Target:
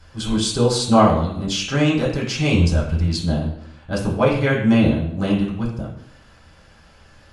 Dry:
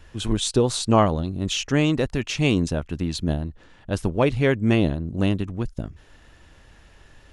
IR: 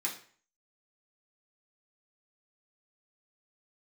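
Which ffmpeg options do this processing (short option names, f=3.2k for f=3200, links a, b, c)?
-filter_complex "[0:a]asplit=3[a][b][c];[a]afade=t=out:st=2.53:d=0.02[d];[b]asubboost=boost=5.5:cutoff=110,afade=t=in:st=2.53:d=0.02,afade=t=out:st=3.06:d=0.02[e];[c]afade=t=in:st=3.06:d=0.02[f];[d][e][f]amix=inputs=3:normalize=0[g];[1:a]atrim=start_sample=2205,asetrate=28224,aresample=44100[h];[g][h]afir=irnorm=-1:irlink=0,volume=-2.5dB"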